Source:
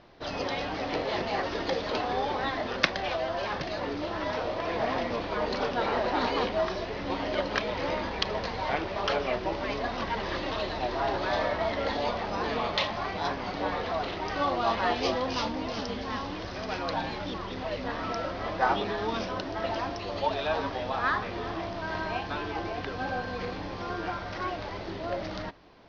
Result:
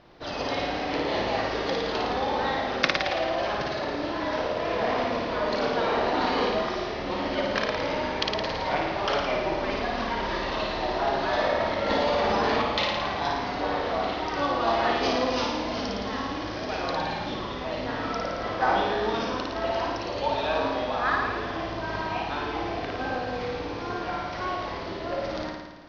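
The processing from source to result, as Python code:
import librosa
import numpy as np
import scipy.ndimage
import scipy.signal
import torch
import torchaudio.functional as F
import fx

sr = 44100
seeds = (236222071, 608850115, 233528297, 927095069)

p1 = x + fx.room_flutter(x, sr, wall_m=9.5, rt60_s=1.2, dry=0)
y = fx.env_flatten(p1, sr, amount_pct=100, at=(11.9, 12.62))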